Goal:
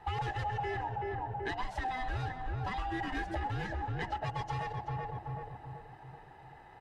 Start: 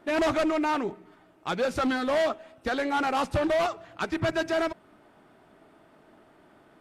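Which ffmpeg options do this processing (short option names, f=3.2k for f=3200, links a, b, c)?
-filter_complex "[0:a]afftfilt=real='real(if(lt(b,1008),b+24*(1-2*mod(floor(b/24),2)),b),0)':imag='imag(if(lt(b,1008),b+24*(1-2*mod(floor(b/24),2)),b),0)':win_size=2048:overlap=0.75,equalizer=f=230:t=o:w=1.3:g=-3.5,aecho=1:1:2.4:0.37,asplit=2[a][b];[b]adelay=380,lowpass=f=1.1k:p=1,volume=-5.5dB,asplit=2[c][d];[d]adelay=380,lowpass=f=1.1k:p=1,volume=0.48,asplit=2[e][f];[f]adelay=380,lowpass=f=1.1k:p=1,volume=0.48,asplit=2[g][h];[h]adelay=380,lowpass=f=1.1k:p=1,volume=0.48,asplit=2[i][j];[j]adelay=380,lowpass=f=1.1k:p=1,volume=0.48,asplit=2[k][l];[l]adelay=380,lowpass=f=1.1k:p=1,volume=0.48[m];[c][e][g][i][k][m]amix=inputs=6:normalize=0[n];[a][n]amix=inputs=2:normalize=0,acompressor=threshold=-35dB:ratio=6,highshelf=f=5.5k:g=-11,asplit=2[o][p];[p]asplit=4[q][r][s][t];[q]adelay=128,afreqshift=-100,volume=-15dB[u];[r]adelay=256,afreqshift=-200,volume=-22.1dB[v];[s]adelay=384,afreqshift=-300,volume=-29.3dB[w];[t]adelay=512,afreqshift=-400,volume=-36.4dB[x];[u][v][w][x]amix=inputs=4:normalize=0[y];[o][y]amix=inputs=2:normalize=0,volume=1.5dB"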